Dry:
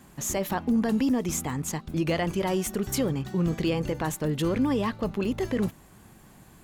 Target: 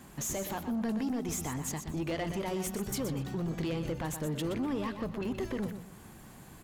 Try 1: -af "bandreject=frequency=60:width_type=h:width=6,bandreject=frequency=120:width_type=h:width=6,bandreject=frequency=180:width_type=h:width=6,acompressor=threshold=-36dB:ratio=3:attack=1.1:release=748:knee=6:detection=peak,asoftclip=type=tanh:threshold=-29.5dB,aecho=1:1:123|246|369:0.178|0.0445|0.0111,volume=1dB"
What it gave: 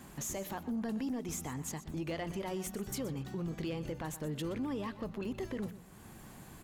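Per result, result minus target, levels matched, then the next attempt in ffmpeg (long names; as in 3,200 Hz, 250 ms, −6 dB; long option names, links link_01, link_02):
downward compressor: peak gain reduction +5.5 dB; echo-to-direct −6 dB
-af "bandreject=frequency=60:width_type=h:width=6,bandreject=frequency=120:width_type=h:width=6,bandreject=frequency=180:width_type=h:width=6,acompressor=threshold=-28dB:ratio=3:attack=1.1:release=748:knee=6:detection=peak,asoftclip=type=tanh:threshold=-29.5dB,aecho=1:1:123|246|369:0.178|0.0445|0.0111,volume=1dB"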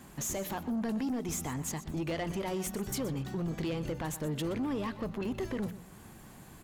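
echo-to-direct −6 dB
-af "bandreject=frequency=60:width_type=h:width=6,bandreject=frequency=120:width_type=h:width=6,bandreject=frequency=180:width_type=h:width=6,acompressor=threshold=-28dB:ratio=3:attack=1.1:release=748:knee=6:detection=peak,asoftclip=type=tanh:threshold=-29.5dB,aecho=1:1:123|246|369:0.355|0.0887|0.0222,volume=1dB"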